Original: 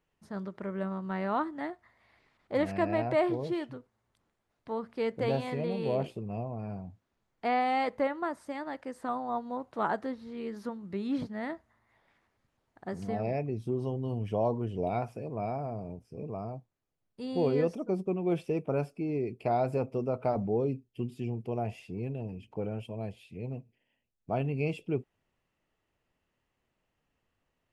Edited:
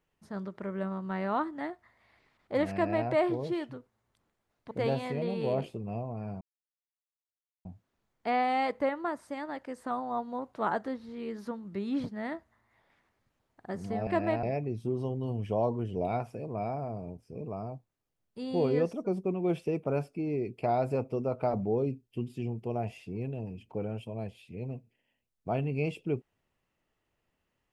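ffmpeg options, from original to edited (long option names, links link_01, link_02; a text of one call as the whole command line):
ffmpeg -i in.wav -filter_complex "[0:a]asplit=5[link_01][link_02][link_03][link_04][link_05];[link_01]atrim=end=4.712[link_06];[link_02]atrim=start=5.128:end=6.83,asetpts=PTS-STARTPTS,afade=type=out:start_time=1.698:duration=0.004:curve=hsin,apad=pad_dur=1.24[link_07];[link_03]atrim=start=6.83:end=13.252,asetpts=PTS-STARTPTS,afade=type=in:duration=0.004:curve=hsin[link_08];[link_04]atrim=start=2.728:end=3.092[link_09];[link_05]atrim=start=13.248[link_10];[link_07][link_08]concat=n=2:v=0:a=1[link_11];[link_06][link_11]acrossfade=duration=0.004:curve1=hsin:curve2=hsin[link_12];[link_12][link_09]acrossfade=duration=0.004:curve1=hsin:curve2=hsin[link_13];[link_13][link_10]acrossfade=duration=0.004:curve1=hsin:curve2=hsin" out.wav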